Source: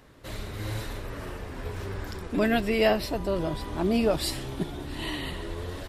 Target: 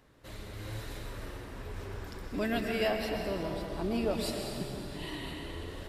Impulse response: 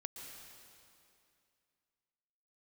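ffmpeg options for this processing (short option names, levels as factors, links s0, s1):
-filter_complex "[1:a]atrim=start_sample=2205[s0];[0:a][s0]afir=irnorm=-1:irlink=0,asplit=3[s1][s2][s3];[s1]afade=t=out:st=0.86:d=0.02[s4];[s2]adynamicequalizer=threshold=0.00501:dfrequency=2600:dqfactor=0.7:tfrequency=2600:tqfactor=0.7:attack=5:release=100:ratio=0.375:range=1.5:mode=boostabove:tftype=highshelf,afade=t=in:st=0.86:d=0.02,afade=t=out:st=2.87:d=0.02[s5];[s3]afade=t=in:st=2.87:d=0.02[s6];[s4][s5][s6]amix=inputs=3:normalize=0,volume=0.668"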